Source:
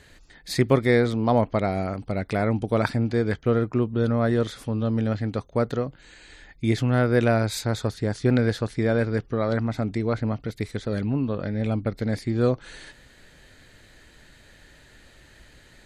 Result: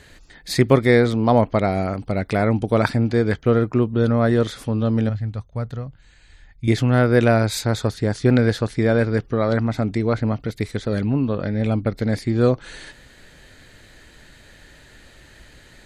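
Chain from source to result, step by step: 5.09–6.68 EQ curve 110 Hz 0 dB, 350 Hz -17 dB, 750 Hz -11 dB; gain +4.5 dB

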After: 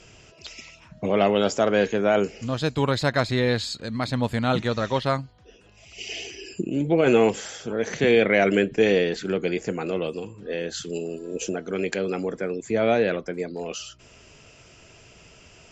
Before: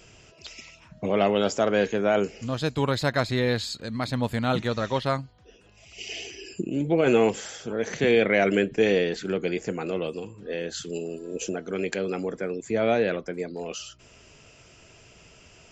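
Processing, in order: LPF 10000 Hz; gain +2 dB

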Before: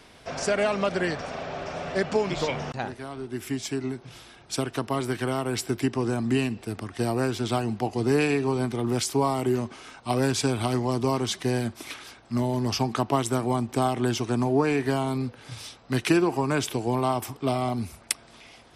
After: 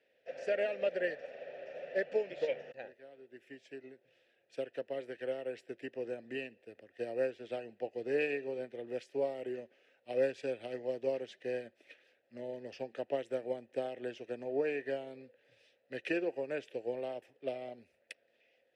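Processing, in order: vowel filter e; upward expander 1.5:1, over -56 dBFS; gain +3.5 dB

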